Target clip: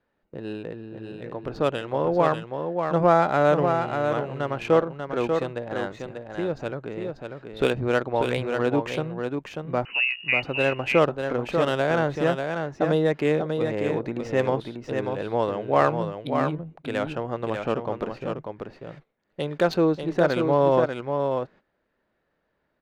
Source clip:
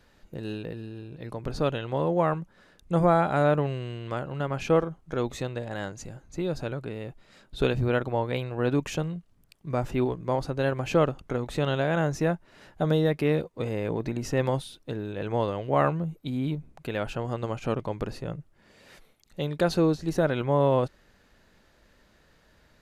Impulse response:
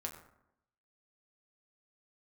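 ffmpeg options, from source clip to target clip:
-filter_complex "[0:a]acrossover=split=800[link_01][link_02];[link_01]aemphasis=mode=production:type=bsi[link_03];[link_02]adynamicsmooth=sensitivity=4:basefreq=2000[link_04];[link_03][link_04]amix=inputs=2:normalize=0,asettb=1/sr,asplit=3[link_05][link_06][link_07];[link_05]atrim=end=9.854[link_08];[link_06]atrim=start=9.85:end=10.43,asetpts=PTS-STARTPTS,afade=type=in:duration=0.004:curve=qsin,afade=type=out:start_time=0.576:duration=0.004:curve=qsin,lowpass=frequency=2600:width_type=q:width=0.5098,lowpass=frequency=2600:width_type=q:width=0.6013,lowpass=frequency=2600:width_type=q:width=0.9,lowpass=frequency=2600:width_type=q:width=2.563,afreqshift=-3000[link_09];[link_07]atrim=start=10.426[link_10];[link_08][link_09]acrossfade=duration=0.004:curve1=hsin:curve2=qsin[link_11];[link_11][link_10]acrossfade=duration=0.004:curve1=qsin:curve2=hsin,aecho=1:1:591:0.531,agate=range=-13dB:threshold=-52dB:ratio=16:detection=peak,volume=5dB"

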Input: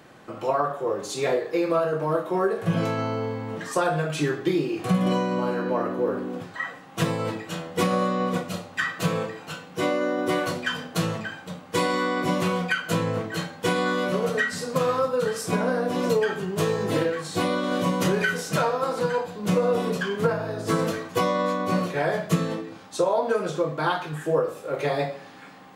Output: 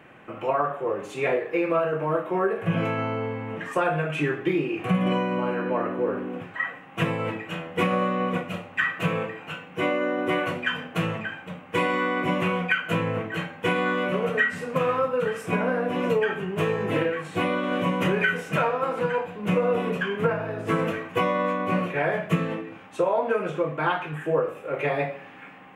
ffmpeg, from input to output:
ffmpeg -i in.wav -af "highshelf=frequency=3400:width_type=q:width=3:gain=-9.5,volume=-1dB" out.wav

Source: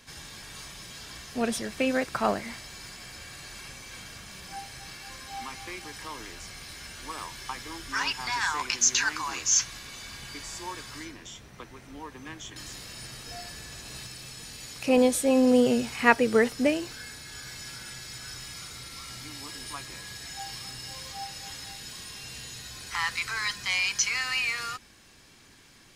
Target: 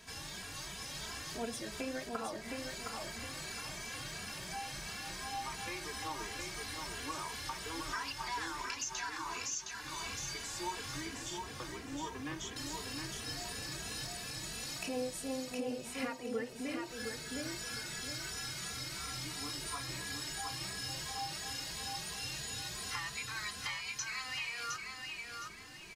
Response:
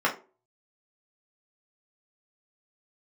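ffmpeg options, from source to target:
-filter_complex "[0:a]acompressor=threshold=-37dB:ratio=8,aecho=1:1:714|1428|2142|2856:0.631|0.208|0.0687|0.0227,asplit=2[link_01][link_02];[1:a]atrim=start_sample=2205,asetrate=22932,aresample=44100[link_03];[link_02][link_03]afir=irnorm=-1:irlink=0,volume=-26.5dB[link_04];[link_01][link_04]amix=inputs=2:normalize=0,asplit=2[link_05][link_06];[link_06]adelay=2.7,afreqshift=2.9[link_07];[link_05][link_07]amix=inputs=2:normalize=1,volume=1.5dB"

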